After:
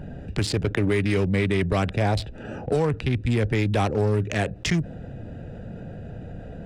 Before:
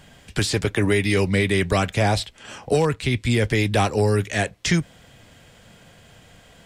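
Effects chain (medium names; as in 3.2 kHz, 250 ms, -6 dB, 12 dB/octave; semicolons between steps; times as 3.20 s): local Wiener filter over 41 samples; treble shelf 4.2 kHz -6.5 dB; in parallel at -7 dB: saturation -24.5 dBFS, distortion -7 dB; on the sum: level flattener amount 50%; trim -4.5 dB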